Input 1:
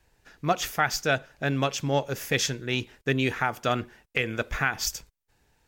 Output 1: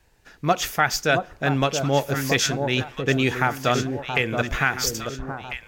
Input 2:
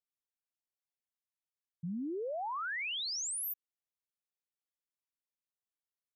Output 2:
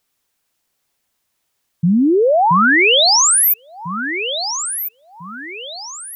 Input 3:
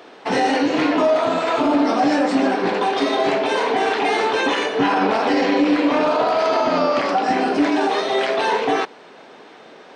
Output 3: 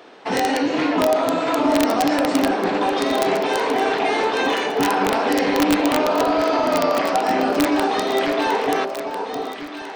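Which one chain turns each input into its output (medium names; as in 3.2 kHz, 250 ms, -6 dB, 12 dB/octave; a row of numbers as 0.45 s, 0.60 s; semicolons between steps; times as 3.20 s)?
integer overflow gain 8.5 dB; echo whose repeats swap between lows and highs 674 ms, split 1.1 kHz, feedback 60%, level -5.5 dB; peak normalisation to -6 dBFS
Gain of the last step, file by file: +4.0 dB, +24.5 dB, -2.0 dB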